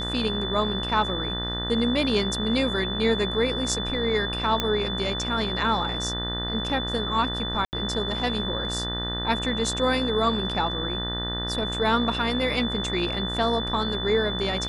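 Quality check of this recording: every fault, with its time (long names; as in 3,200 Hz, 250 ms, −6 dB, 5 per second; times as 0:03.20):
mains buzz 60 Hz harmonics 32 −32 dBFS
whistle 3,500 Hz −30 dBFS
0:04.60: click −9 dBFS
0:07.65–0:07.73: drop-out 79 ms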